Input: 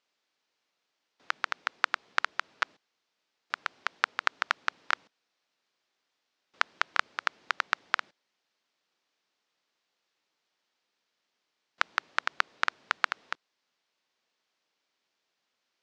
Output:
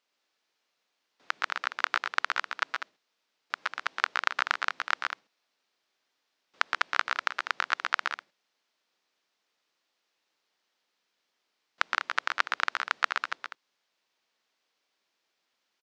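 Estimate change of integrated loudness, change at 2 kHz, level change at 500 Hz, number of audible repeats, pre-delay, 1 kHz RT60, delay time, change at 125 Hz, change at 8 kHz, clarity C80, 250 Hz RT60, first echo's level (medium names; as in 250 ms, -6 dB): +1.5 dB, +2.0 dB, +1.5 dB, 2, no reverb, no reverb, 118 ms, no reading, +2.0 dB, no reverb, no reverb, -6.0 dB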